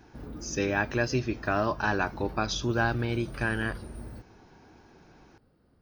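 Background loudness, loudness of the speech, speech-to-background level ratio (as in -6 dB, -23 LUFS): -43.0 LUFS, -29.0 LUFS, 14.0 dB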